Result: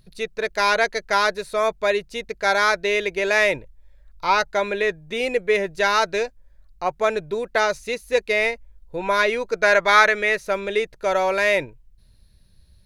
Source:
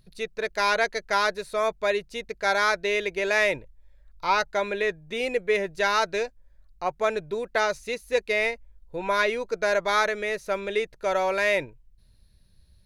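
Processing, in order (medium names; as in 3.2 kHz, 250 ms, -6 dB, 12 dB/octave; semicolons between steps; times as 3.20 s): 9.31–10.51 s: dynamic bell 1.9 kHz, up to +7 dB, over -36 dBFS, Q 0.75; trim +4 dB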